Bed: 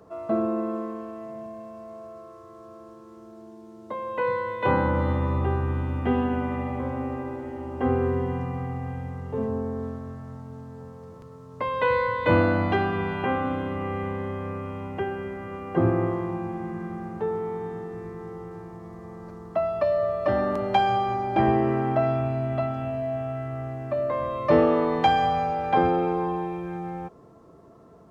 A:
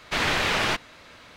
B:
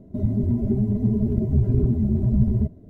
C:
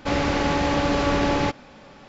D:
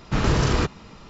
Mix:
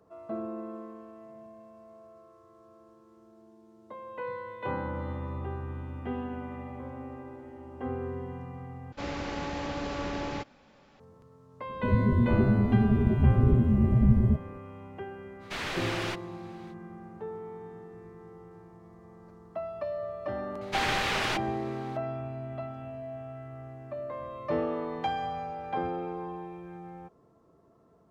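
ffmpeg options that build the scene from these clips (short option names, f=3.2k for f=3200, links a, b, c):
-filter_complex "[1:a]asplit=2[a][b];[0:a]volume=-11dB[c];[a]asoftclip=type=tanh:threshold=-16.5dB[d];[c]asplit=2[e][f];[e]atrim=end=8.924[g];[3:a]atrim=end=2.08,asetpts=PTS-STARTPTS,volume=-12.5dB[h];[f]atrim=start=10.996[i];[2:a]atrim=end=2.89,asetpts=PTS-STARTPTS,volume=-2dB,afade=t=in:d=0.004:c=hsin,afade=t=out:st=2.886:d=0.004:c=hsin,adelay=11690[j];[d]atrim=end=1.36,asetpts=PTS-STARTPTS,volume=-9.5dB,afade=t=in:d=0.05,afade=t=out:st=1.31:d=0.05,adelay=15390[k];[b]atrim=end=1.36,asetpts=PTS-STARTPTS,volume=-5.5dB,afade=t=in:d=0.004:c=hsin,afade=t=out:st=1.356:d=0.004:c=hsin,adelay=20610[l];[g][h]acrossfade=d=0.004:c1=hsin:c2=hsin[m];[m][i]acrossfade=d=0.004:c1=hsin:c2=hsin[n];[n][j][k][l]amix=inputs=4:normalize=0"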